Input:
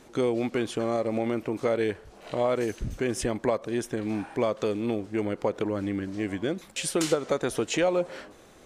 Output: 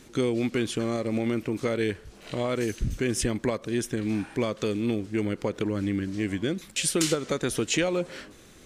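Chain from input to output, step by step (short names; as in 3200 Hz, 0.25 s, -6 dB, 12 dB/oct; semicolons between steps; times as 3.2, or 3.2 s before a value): bell 740 Hz -11.5 dB 1.7 oct; gain +5 dB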